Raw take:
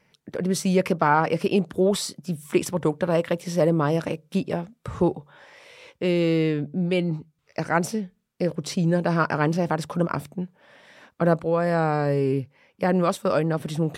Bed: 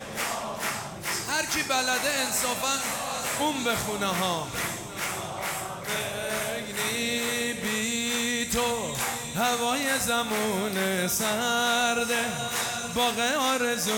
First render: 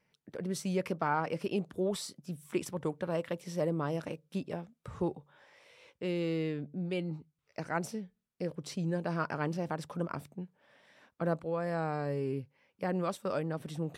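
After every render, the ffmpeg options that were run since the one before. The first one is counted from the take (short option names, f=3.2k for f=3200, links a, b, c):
-af "volume=-11.5dB"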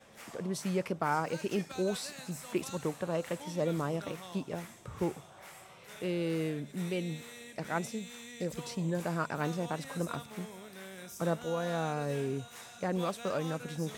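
-filter_complex "[1:a]volume=-20.5dB[a];[0:a][a]amix=inputs=2:normalize=0"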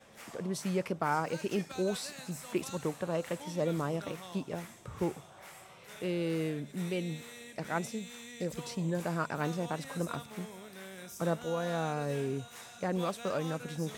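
-af anull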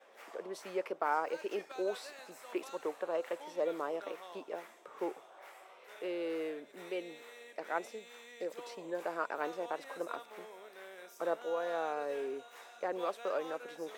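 -af "highpass=f=380:w=0.5412,highpass=f=380:w=1.3066,equalizer=f=8.8k:w=0.38:g=-12.5"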